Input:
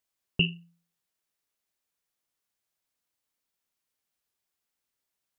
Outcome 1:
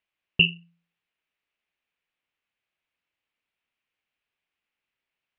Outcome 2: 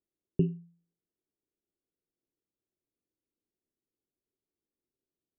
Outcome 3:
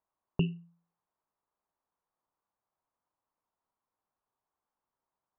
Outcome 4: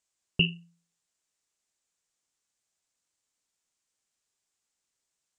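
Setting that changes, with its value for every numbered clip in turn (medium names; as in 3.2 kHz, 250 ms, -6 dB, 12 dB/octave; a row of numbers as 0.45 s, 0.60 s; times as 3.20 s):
resonant low-pass, frequency: 2.6 kHz, 360 Hz, 1 kHz, 7.5 kHz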